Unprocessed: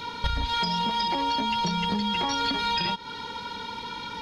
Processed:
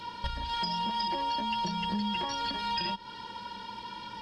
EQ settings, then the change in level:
EQ curve with evenly spaced ripples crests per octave 1.3, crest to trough 9 dB
−7.5 dB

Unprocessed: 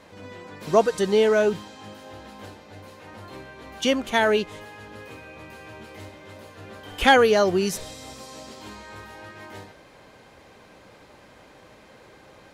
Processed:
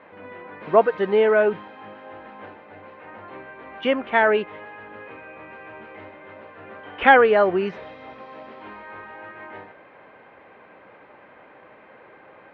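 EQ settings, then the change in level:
high-pass filter 490 Hz 6 dB per octave
low-pass filter 2,400 Hz 24 dB per octave
high-frequency loss of the air 89 metres
+5.0 dB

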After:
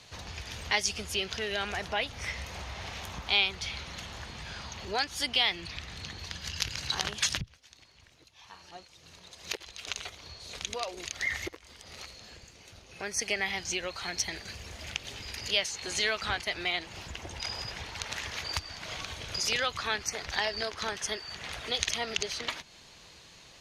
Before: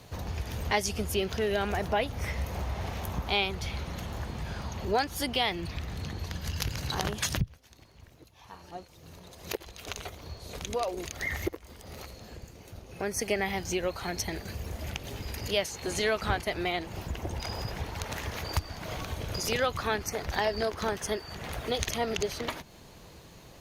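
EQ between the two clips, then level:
high-frequency loss of the air 82 metres
tilt shelving filter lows −9.5 dB, about 1,400 Hz
0.0 dB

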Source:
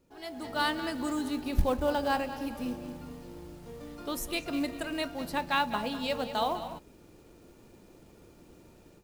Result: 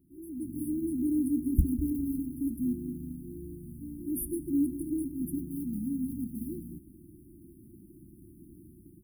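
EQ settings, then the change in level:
high-pass filter 47 Hz
linear-phase brick-wall band-stop 370–9,100 Hz
+5.0 dB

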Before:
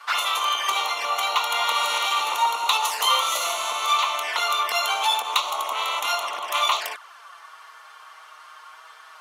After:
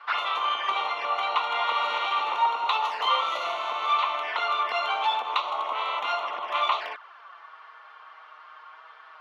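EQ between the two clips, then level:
high-frequency loss of the air 330 metres
high-shelf EQ 11,000 Hz −6 dB
0.0 dB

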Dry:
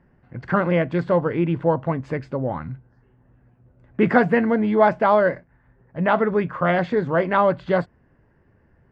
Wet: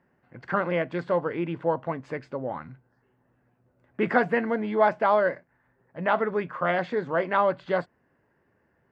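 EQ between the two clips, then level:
high-pass filter 370 Hz 6 dB per octave
−3.5 dB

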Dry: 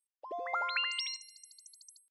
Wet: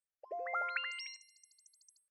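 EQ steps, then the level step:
high-frequency loss of the air 66 metres
mains-hum notches 50/100/150/200/250/300/350/400 Hz
phaser with its sweep stopped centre 970 Hz, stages 6
0.0 dB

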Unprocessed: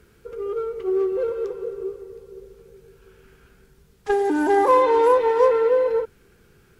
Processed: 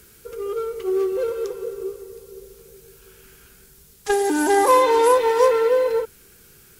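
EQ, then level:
high-shelf EQ 2,800 Hz +10.5 dB
high-shelf EQ 6,300 Hz +10.5 dB
0.0 dB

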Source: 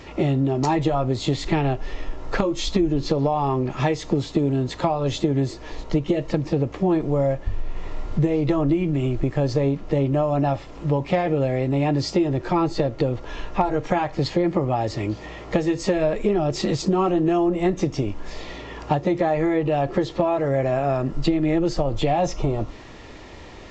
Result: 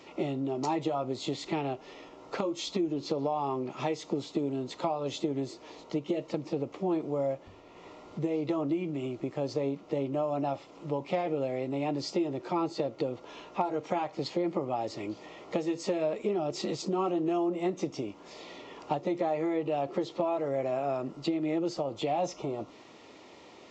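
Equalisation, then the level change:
high-pass filter 230 Hz 12 dB per octave
parametric band 1,700 Hz −10.5 dB 0.26 octaves
−8.0 dB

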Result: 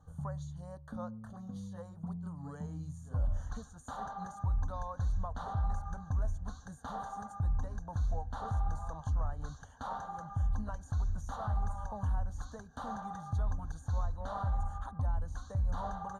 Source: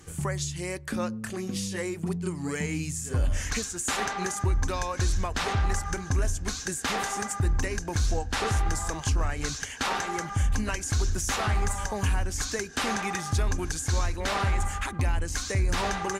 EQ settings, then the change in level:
moving average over 17 samples
phaser with its sweep stopped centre 880 Hz, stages 4
−6.0 dB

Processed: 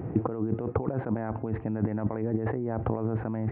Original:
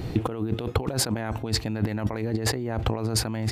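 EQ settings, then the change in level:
Gaussian smoothing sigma 5.8 samples
high-pass filter 110 Hz
0.0 dB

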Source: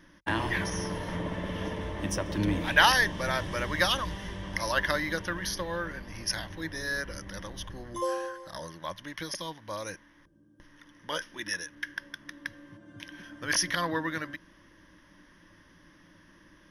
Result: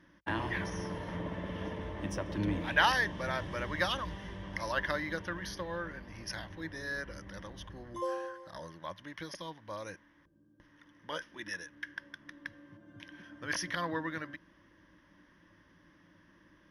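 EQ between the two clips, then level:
high-pass filter 41 Hz
high-shelf EQ 5,300 Hz −12 dB
−4.5 dB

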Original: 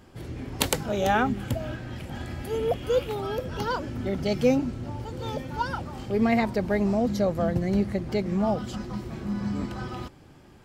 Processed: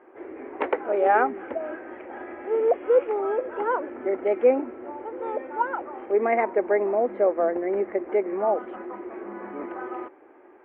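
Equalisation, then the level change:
elliptic band-pass filter 350–2,200 Hz, stop band 40 dB
high-frequency loss of the air 220 metres
spectral tilt −1.5 dB per octave
+5.0 dB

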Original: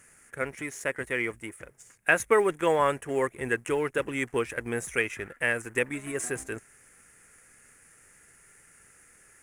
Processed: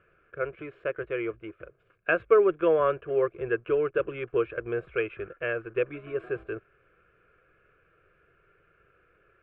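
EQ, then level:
low-pass filter 2,500 Hz 24 dB per octave
parametric band 320 Hz +10 dB 0.84 octaves
phaser with its sweep stopped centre 1,300 Hz, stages 8
0.0 dB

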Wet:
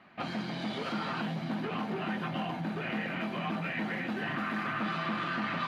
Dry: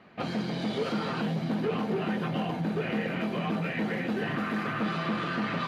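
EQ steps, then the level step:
bass and treble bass −3 dB, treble −5 dB
low-shelf EQ 240 Hz −4 dB
parametric band 460 Hz −10.5 dB 0.53 octaves
0.0 dB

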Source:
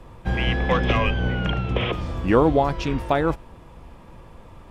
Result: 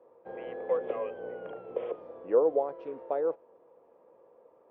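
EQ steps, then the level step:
four-pole ladder band-pass 530 Hz, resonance 65%
−1.5 dB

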